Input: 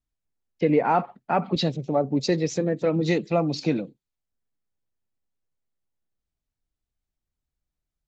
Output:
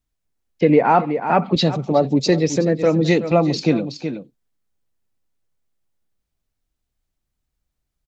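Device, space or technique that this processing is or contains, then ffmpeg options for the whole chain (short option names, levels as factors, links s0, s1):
ducked delay: -filter_complex "[0:a]asplit=3[s0][s1][s2];[s1]adelay=373,volume=0.376[s3];[s2]apad=whole_len=372392[s4];[s3][s4]sidechaincompress=threshold=0.0251:ratio=4:attack=48:release=108[s5];[s0][s5]amix=inputs=2:normalize=0,volume=2.11"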